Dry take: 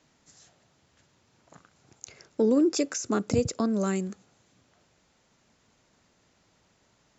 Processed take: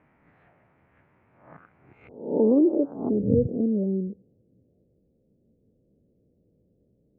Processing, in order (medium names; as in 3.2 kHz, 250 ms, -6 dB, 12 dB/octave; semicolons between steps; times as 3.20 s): reverse spectral sustain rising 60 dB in 0.56 s; elliptic low-pass 2.3 kHz, stop band 60 dB, from 2.07 s 870 Hz, from 3.08 s 510 Hz; trim +2.5 dB